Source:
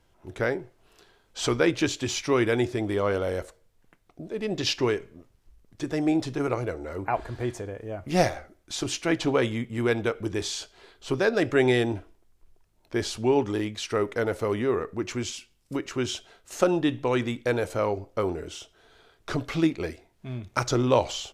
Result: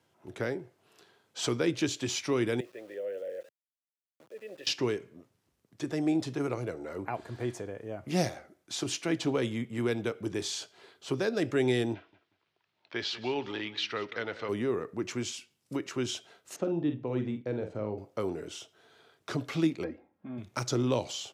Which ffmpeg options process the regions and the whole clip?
ffmpeg -i in.wav -filter_complex "[0:a]asettb=1/sr,asplit=3[link_01][link_02][link_03];[link_01]atrim=end=2.604[link_04];[link_02]atrim=start=2.6:end=4.67,asetpts=PTS-STARTPTS,afade=type=in:duration=0.004:curve=qsin,afade=type=out:start_time=2.066:duration=0.004:curve=qsin,asplit=3[link_05][link_06][link_07];[link_05]bandpass=frequency=530:width_type=q:width=8,volume=0dB[link_08];[link_06]bandpass=frequency=1840:width_type=q:width=8,volume=-6dB[link_09];[link_07]bandpass=frequency=2480:width_type=q:width=8,volume=-9dB[link_10];[link_08][link_09][link_10]amix=inputs=3:normalize=0,aeval=exprs='val(0)*gte(abs(val(0)),0.00251)':channel_layout=same[link_11];[link_03]atrim=start=4.666[link_12];[link_04][link_11]acrossfade=duration=0.004:curve1=hsin:curve2=qsin[link_13];[link_13][link_12]acrossfade=duration=0.004:curve1=qsin:curve2=hsin,asettb=1/sr,asplit=3[link_14][link_15][link_16];[link_14]atrim=end=11.944[link_17];[link_15]atrim=start=11.94:end=14.49,asetpts=PTS-STARTPTS,afade=type=in:duration=0.004:curve=qsin,afade=type=out:start_time=2.546:duration=0.004:curve=qsin,lowpass=frequency=4000:width=0.5412,lowpass=frequency=4000:width=1.3066,tiltshelf=frequency=870:gain=-9,aecho=1:1:186|372:0.141|0.0353,atrim=end_sample=112455[link_18];[link_16]atrim=start=14.486[link_19];[link_17][link_18]acrossfade=duration=0.004:curve1=hsin:curve2=qsin[link_20];[link_20][link_19]acrossfade=duration=0.004:curve1=qsin:curve2=hsin,asettb=1/sr,asplit=3[link_21][link_22][link_23];[link_21]atrim=end=16.564[link_24];[link_22]atrim=start=16.56:end=17.98,asetpts=PTS-STARTPTS,afade=type=in:duration=0.004:curve=qsin,afade=type=out:start_time=1.416:duration=0.004:curve=qsin,lowpass=2300,equalizer=frequency=1500:width_type=o:width=2.7:gain=-10.5,asplit=2[link_25][link_26];[link_26]adelay=47,volume=-8dB[link_27];[link_25][link_27]amix=inputs=2:normalize=0,atrim=end_sample=62622[link_28];[link_23]atrim=start=17.976[link_29];[link_24][link_28]acrossfade=duration=0.004:curve1=hsin:curve2=qsin[link_30];[link_30][link_29]acrossfade=duration=0.004:curve1=qsin:curve2=hsin,asettb=1/sr,asplit=3[link_31][link_32][link_33];[link_31]atrim=end=19.844[link_34];[link_32]atrim=start=19.84:end=20.38,asetpts=PTS-STARTPTS,afade=type=in:duration=0.004:curve=qsin,afade=type=out:start_time=0.536:duration=0.004:curve=qsin,lowpass=1300,aecho=1:1:3.7:0.78,atrim=end_sample=23814[link_35];[link_33]atrim=start=20.376[link_36];[link_34][link_35]acrossfade=duration=0.004:curve1=hsin:curve2=qsin[link_37];[link_37][link_36]acrossfade=duration=0.004:curve1=qsin:curve2=hsin,highpass=frequency=110:width=0.5412,highpass=frequency=110:width=1.3066,acrossover=split=400|3000[link_38][link_39][link_40];[link_39]acompressor=threshold=-36dB:ratio=2[link_41];[link_38][link_41][link_40]amix=inputs=3:normalize=0,volume=-3dB" out.wav

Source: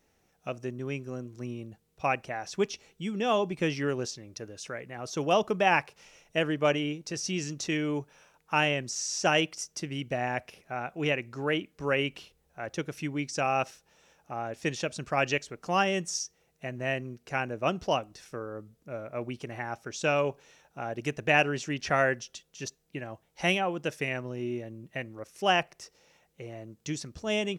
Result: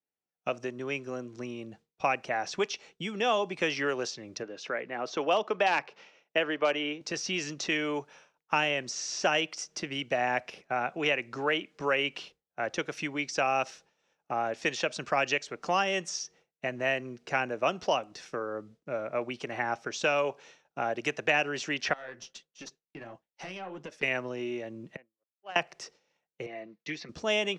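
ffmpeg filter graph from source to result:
ffmpeg -i in.wav -filter_complex "[0:a]asettb=1/sr,asplit=3[link_01][link_02][link_03];[link_01]atrim=end=4.434[link_04];[link_02]atrim=start=4.43:end=7.01,asetpts=PTS-STARTPTS,afade=type=in:duration=0.004:curve=qsin,afade=type=out:start_time=2.576:duration=0.004:curve=qsin,highpass=210,lowpass=3900,asoftclip=type=hard:threshold=-14.5dB[link_05];[link_03]atrim=start=7.006[link_06];[link_04][link_05]acrossfade=duration=0.004:curve1=hsin:curve2=qsin[link_07];[link_07][link_06]acrossfade=duration=0.004:curve1=qsin:curve2=hsin,asettb=1/sr,asplit=3[link_08][link_09][link_10];[link_08]atrim=end=21.934[link_11];[link_09]atrim=start=21.93:end=24.03,asetpts=PTS-STARTPTS,afade=type=in:duration=0.004:curve=qsin,afade=type=out:start_time=2.096:duration=0.004:curve=qsin,acompressor=threshold=-36dB:ratio=6:attack=3.2:release=140:knee=1:detection=peak,aeval=exprs='(tanh(35.5*val(0)+0.5)-tanh(0.5))/35.5':channel_layout=same,flanger=delay=3.4:depth=8.7:regen=-45:speed=1.5:shape=sinusoidal[link_12];[link_10]atrim=start=24.026[link_13];[link_11][link_12]acrossfade=duration=0.004:curve1=hsin:curve2=qsin[link_14];[link_14][link_13]acrossfade=duration=0.004:curve1=qsin:curve2=hsin,asettb=1/sr,asplit=3[link_15][link_16][link_17];[link_15]atrim=end=24.964[link_18];[link_16]atrim=start=24.96:end=25.56,asetpts=PTS-STARTPTS,afade=type=in:duration=0.004:curve=qsin,afade=type=out:start_time=0.596:duration=0.004:curve=qsin,aderivative,adynamicsmooth=sensitivity=1:basefreq=660[link_19];[link_17]atrim=start=25.556[link_20];[link_18][link_19]acrossfade=duration=0.004:curve1=hsin:curve2=qsin[link_21];[link_21][link_20]acrossfade=duration=0.004:curve1=qsin:curve2=hsin,asettb=1/sr,asplit=3[link_22][link_23][link_24];[link_22]atrim=end=26.464[link_25];[link_23]atrim=start=26.46:end=27.09,asetpts=PTS-STARTPTS,afade=type=in:duration=0.004:curve=qsin,afade=type=out:start_time=0.626:duration=0.004:curve=qsin,highpass=290,equalizer=frequency=330:width_type=q:width=4:gain=-8,equalizer=frequency=570:width_type=q:width=4:gain=-7,equalizer=frequency=930:width_type=q:width=4:gain=-7,equalizer=frequency=1400:width_type=q:width=4:gain=-8,equalizer=frequency=2000:width_type=q:width=4:gain=4,equalizer=frequency=3200:width_type=q:width=4:gain=-7,lowpass=frequency=4100:width=0.5412,lowpass=frequency=4100:width=1.3066,aecho=1:1:5.9:0.52,atrim=end_sample=27783[link_26];[link_24]atrim=start=27.086[link_27];[link_25][link_26]acrossfade=duration=0.004:curve1=hsin:curve2=qsin[link_28];[link_28][link_27]acrossfade=duration=0.004:curve1=qsin:curve2=hsin,agate=range=-33dB:threshold=-50dB:ratio=3:detection=peak,acrossover=split=150 7100:gain=0.2 1 0.0631[link_29][link_30][link_31];[link_29][link_30][link_31]amix=inputs=3:normalize=0,acrossover=split=480|4300[link_32][link_33][link_34];[link_32]acompressor=threshold=-45dB:ratio=4[link_35];[link_33]acompressor=threshold=-31dB:ratio=4[link_36];[link_34]acompressor=threshold=-46dB:ratio=4[link_37];[link_35][link_36][link_37]amix=inputs=3:normalize=0,volume=6dB" out.wav

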